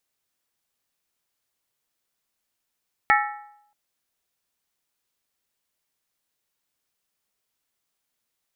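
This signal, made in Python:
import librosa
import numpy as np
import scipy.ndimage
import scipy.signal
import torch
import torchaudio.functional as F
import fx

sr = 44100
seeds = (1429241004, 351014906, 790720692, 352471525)

y = fx.strike_skin(sr, length_s=0.63, level_db=-16.5, hz=831.0, decay_s=0.75, tilt_db=1, modes=5)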